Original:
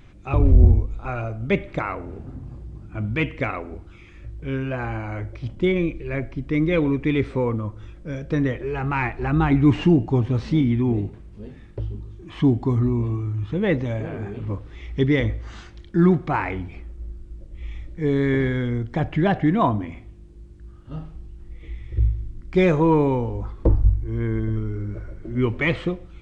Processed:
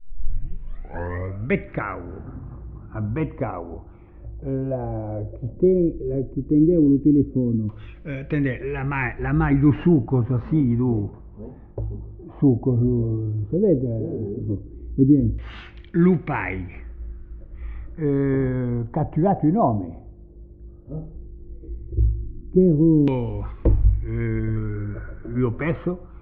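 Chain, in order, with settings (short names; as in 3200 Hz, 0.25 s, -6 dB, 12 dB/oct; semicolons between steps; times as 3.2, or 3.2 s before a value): tape start at the beginning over 1.51 s; LFO low-pass saw down 0.13 Hz 260–2900 Hz; dynamic EQ 1200 Hz, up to -7 dB, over -36 dBFS, Q 0.77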